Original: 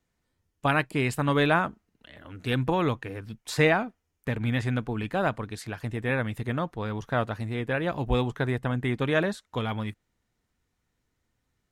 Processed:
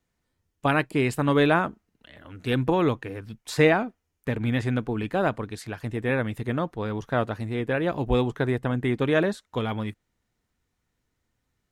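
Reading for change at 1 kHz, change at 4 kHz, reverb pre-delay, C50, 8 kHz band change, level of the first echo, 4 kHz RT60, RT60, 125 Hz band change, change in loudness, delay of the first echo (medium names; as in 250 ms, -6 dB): +1.0 dB, 0.0 dB, no reverb, no reverb, 0.0 dB, no echo, no reverb, no reverb, +1.0 dB, +2.0 dB, no echo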